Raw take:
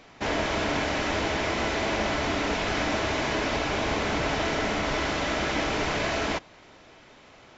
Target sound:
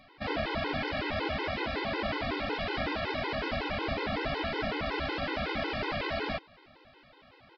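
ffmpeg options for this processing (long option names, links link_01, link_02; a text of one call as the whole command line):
ffmpeg -i in.wav -af "aresample=11025,aresample=44100,afftfilt=real='re*gt(sin(2*PI*5.4*pts/sr)*(1-2*mod(floor(b*sr/1024/270),2)),0)':imag='im*gt(sin(2*PI*5.4*pts/sr)*(1-2*mod(floor(b*sr/1024/270),2)),0)':win_size=1024:overlap=0.75,volume=-2dB" out.wav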